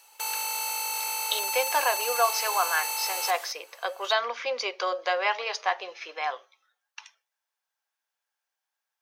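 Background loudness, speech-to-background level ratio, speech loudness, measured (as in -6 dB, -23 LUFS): -28.5 LUFS, 0.0 dB, -28.5 LUFS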